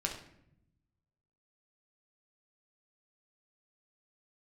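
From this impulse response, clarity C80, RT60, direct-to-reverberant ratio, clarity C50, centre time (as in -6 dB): 10.5 dB, 0.75 s, 1.0 dB, 6.5 dB, 23 ms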